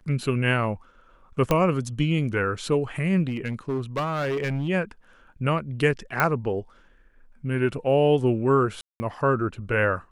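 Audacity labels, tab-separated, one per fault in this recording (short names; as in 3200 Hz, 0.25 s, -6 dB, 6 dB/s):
1.510000	1.510000	pop -8 dBFS
3.270000	4.690000	clipped -22.5 dBFS
6.200000	6.200000	pop -7 dBFS
8.810000	9.000000	gap 0.19 s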